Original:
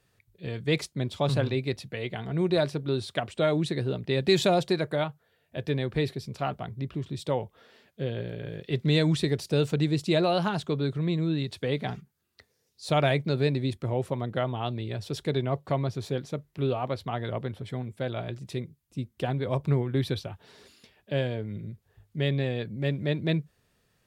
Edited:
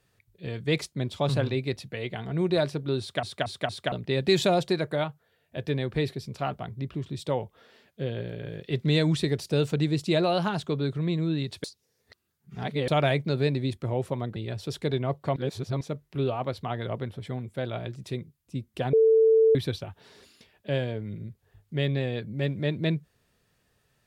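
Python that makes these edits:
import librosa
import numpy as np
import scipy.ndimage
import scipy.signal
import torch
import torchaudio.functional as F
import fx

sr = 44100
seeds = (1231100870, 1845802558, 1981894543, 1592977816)

y = fx.edit(x, sr, fx.stutter_over(start_s=3.0, slice_s=0.23, count=4),
    fx.reverse_span(start_s=11.64, length_s=1.24),
    fx.cut(start_s=14.36, length_s=0.43),
    fx.reverse_span(start_s=15.79, length_s=0.45),
    fx.bleep(start_s=19.36, length_s=0.62, hz=445.0, db=-15.5), tone=tone)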